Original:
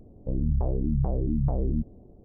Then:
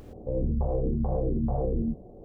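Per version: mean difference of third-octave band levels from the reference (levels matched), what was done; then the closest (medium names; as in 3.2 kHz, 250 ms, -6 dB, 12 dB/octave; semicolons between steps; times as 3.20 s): 4.0 dB: graphic EQ 125/500/1000 Hz +4/+10/+7 dB; upward compressor, threshold -36 dBFS; gated-style reverb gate 140 ms flat, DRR -4.5 dB; peak limiter -12.5 dBFS, peak gain reduction 8 dB; trim -7 dB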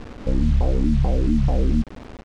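10.5 dB: comb 3.9 ms, depth 34%; in parallel at +1 dB: compression 10:1, threshold -35 dBFS, peak gain reduction 15 dB; on the sum: bit crusher 7-bit; distance through air 100 m; trim +4.5 dB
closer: first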